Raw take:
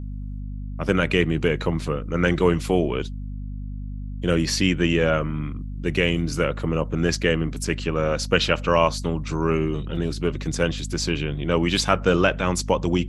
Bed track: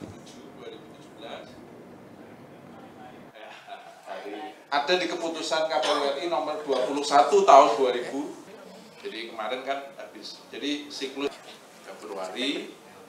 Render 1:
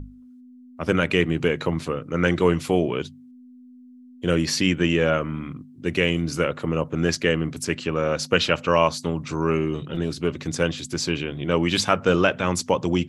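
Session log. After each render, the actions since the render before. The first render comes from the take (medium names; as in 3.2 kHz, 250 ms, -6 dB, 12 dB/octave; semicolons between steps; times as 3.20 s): hum notches 50/100/150/200 Hz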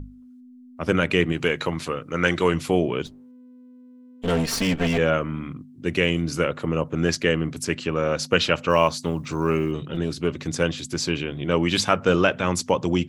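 1.32–2.54 s: tilt shelf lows -4 dB, about 700 Hz; 3.06–4.98 s: comb filter that takes the minimum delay 4.4 ms; 8.70–9.72 s: companded quantiser 8-bit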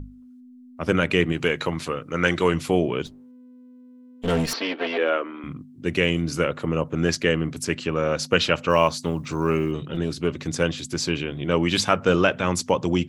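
4.53–5.44 s: elliptic band-pass 310–4300 Hz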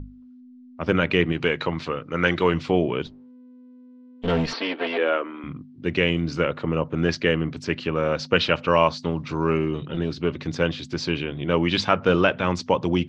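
low-pass 4.8 kHz 24 dB/octave; peaking EQ 930 Hz +2 dB 0.26 oct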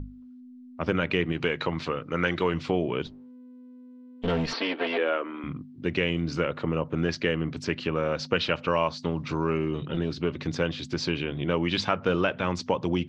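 compression 2:1, threshold -25 dBFS, peak gain reduction 7 dB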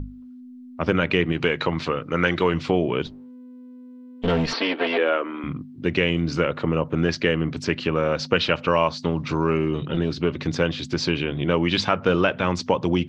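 trim +5 dB; peak limiter -3 dBFS, peak gain reduction 1.5 dB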